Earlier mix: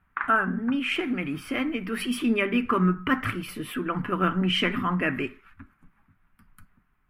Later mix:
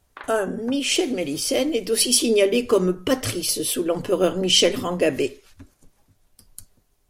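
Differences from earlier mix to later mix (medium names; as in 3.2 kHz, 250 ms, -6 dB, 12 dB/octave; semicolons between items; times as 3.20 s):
speech +3.5 dB; master: remove FFT filter 110 Hz 0 dB, 200 Hz +8 dB, 520 Hz -13 dB, 1.3 kHz +13 dB, 2.4 kHz +5 dB, 4.1 kHz -17 dB, 6.3 kHz -25 dB, 16 kHz -10 dB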